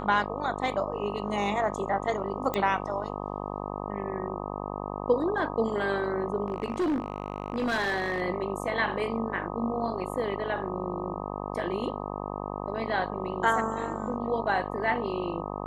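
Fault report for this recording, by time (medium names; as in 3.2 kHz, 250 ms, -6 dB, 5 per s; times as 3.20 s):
buzz 50 Hz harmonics 25 -35 dBFS
2.54 s: pop -15 dBFS
6.48–8.22 s: clipped -23.5 dBFS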